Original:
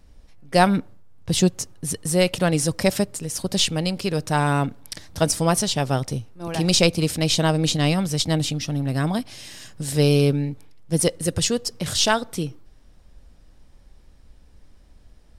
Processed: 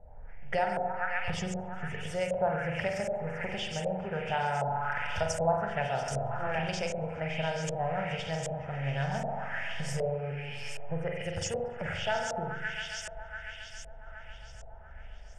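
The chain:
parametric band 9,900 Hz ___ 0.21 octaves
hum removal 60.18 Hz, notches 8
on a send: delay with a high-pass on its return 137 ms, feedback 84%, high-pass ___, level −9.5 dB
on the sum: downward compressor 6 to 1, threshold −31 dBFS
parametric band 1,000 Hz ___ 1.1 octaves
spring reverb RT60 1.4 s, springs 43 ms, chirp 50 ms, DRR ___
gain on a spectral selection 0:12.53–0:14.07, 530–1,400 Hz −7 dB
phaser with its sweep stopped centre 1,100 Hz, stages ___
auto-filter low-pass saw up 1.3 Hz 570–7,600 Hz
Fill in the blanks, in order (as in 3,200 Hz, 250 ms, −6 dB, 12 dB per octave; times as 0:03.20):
−4 dB, 1,600 Hz, +9.5 dB, 1 dB, 6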